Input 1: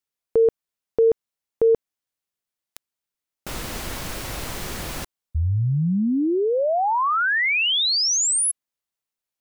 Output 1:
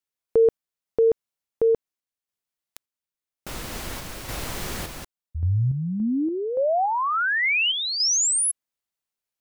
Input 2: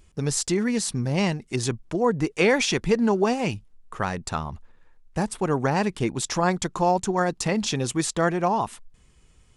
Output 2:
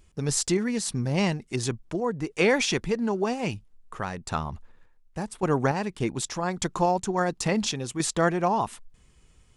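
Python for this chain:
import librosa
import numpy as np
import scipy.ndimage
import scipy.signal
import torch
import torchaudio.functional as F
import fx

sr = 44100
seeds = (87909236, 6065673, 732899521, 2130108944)

y = fx.tremolo_random(x, sr, seeds[0], hz=3.5, depth_pct=55)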